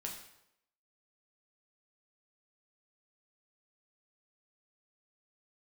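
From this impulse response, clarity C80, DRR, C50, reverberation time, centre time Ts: 8.5 dB, -0.5 dB, 6.0 dB, 0.80 s, 31 ms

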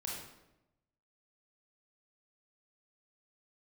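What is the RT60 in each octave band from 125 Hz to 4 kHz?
1.2, 1.1, 1.0, 0.85, 0.75, 0.65 s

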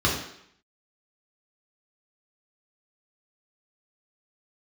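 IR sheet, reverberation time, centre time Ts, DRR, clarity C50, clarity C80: 0.70 s, 39 ms, -3.5 dB, 4.0 dB, 7.5 dB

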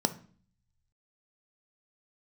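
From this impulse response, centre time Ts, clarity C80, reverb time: 5 ms, 21.0 dB, 0.45 s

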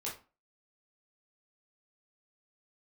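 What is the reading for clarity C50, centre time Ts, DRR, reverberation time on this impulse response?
8.0 dB, 28 ms, -5.5 dB, 0.35 s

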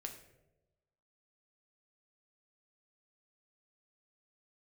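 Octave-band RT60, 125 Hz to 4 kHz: 1.2, 1.1, 1.2, 0.85, 0.65, 0.50 s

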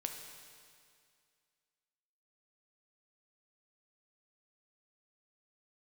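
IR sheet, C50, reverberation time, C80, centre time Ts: 5.0 dB, 2.2 s, 6.0 dB, 54 ms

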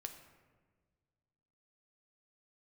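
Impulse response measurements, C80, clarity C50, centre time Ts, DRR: 10.0 dB, 8.5 dB, 20 ms, 5.0 dB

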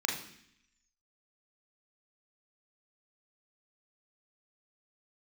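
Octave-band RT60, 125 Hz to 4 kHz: 0.85, 0.90, 0.65, 0.65, 0.85, 0.85 s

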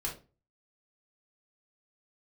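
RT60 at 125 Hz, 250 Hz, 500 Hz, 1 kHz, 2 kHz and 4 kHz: 0.50, 0.40, 0.35, 0.30, 0.25, 0.25 s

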